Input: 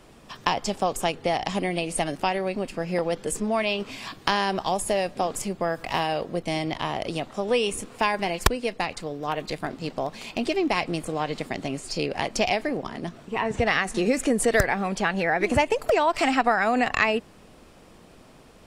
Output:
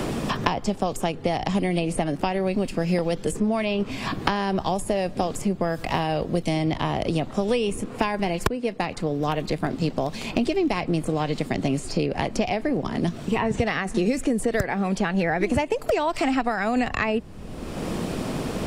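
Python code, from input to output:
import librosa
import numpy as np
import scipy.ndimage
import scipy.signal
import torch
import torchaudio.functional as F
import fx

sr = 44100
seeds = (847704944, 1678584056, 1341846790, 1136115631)

y = fx.low_shelf(x, sr, hz=400.0, db=10.5)
y = fx.band_squash(y, sr, depth_pct=100)
y = F.gain(torch.from_numpy(y), -4.0).numpy()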